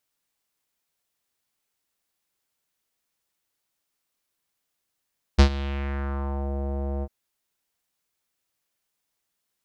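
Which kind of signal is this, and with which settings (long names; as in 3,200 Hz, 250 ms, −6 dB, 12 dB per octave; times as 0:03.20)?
subtractive voice square C#2 12 dB per octave, low-pass 650 Hz, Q 2.2, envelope 3 octaves, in 1.12 s, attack 17 ms, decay 0.09 s, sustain −17.5 dB, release 0.05 s, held 1.65 s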